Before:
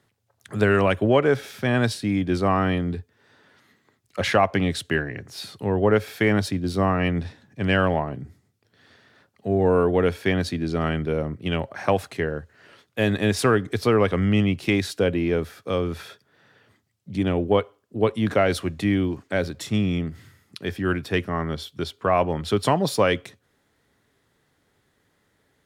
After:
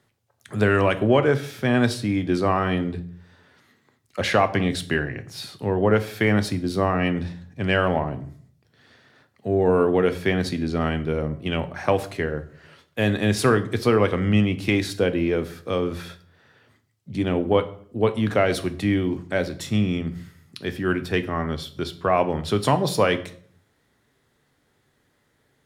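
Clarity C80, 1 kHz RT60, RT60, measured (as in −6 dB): 19.5 dB, 0.50 s, 0.55 s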